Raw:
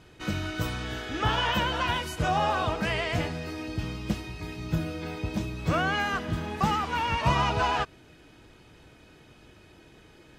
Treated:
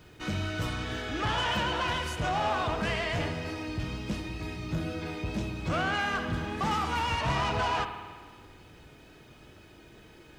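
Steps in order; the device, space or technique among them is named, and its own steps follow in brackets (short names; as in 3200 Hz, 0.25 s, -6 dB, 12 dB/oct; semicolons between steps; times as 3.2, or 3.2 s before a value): 6.71–7.21 high shelf 6900 Hz +10 dB; compact cassette (soft clip -24.5 dBFS, distortion -12 dB; LPF 11000 Hz 12 dB/oct; wow and flutter 19 cents; white noise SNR 41 dB); spring tank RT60 1.6 s, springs 52 ms, chirp 25 ms, DRR 7 dB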